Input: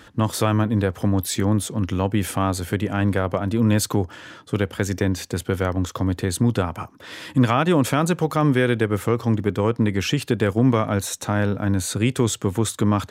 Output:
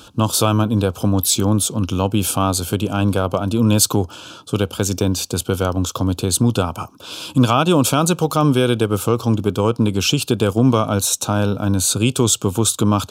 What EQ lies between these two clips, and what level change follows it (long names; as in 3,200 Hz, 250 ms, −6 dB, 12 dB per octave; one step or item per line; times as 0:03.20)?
Butterworth band-reject 1,900 Hz, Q 1.7
high-shelf EQ 2,100 Hz +8 dB
+3.0 dB